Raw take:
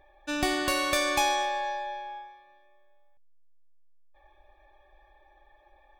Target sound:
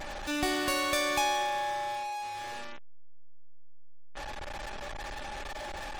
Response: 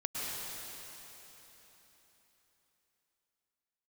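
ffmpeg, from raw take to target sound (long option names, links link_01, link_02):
-af "aeval=exprs='val(0)+0.5*0.0398*sgn(val(0))':channel_layout=same,afftfilt=real='re*gte(hypot(re,im),0.00631)':imag='im*gte(hypot(re,im),0.00631)':win_size=1024:overlap=0.75,volume=-5dB"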